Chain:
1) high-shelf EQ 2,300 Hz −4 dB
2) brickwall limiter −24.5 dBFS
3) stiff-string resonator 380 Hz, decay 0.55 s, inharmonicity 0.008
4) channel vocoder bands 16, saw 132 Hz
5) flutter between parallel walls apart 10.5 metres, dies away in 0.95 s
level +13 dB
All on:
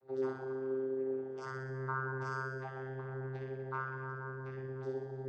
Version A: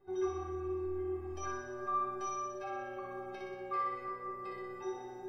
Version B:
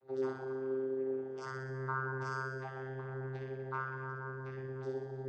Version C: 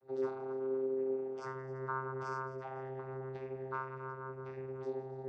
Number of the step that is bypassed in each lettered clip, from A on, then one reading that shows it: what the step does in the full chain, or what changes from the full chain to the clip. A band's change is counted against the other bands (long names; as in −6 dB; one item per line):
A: 4, 125 Hz band −12.0 dB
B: 1, 4 kHz band +2.5 dB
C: 5, change in momentary loudness spread +2 LU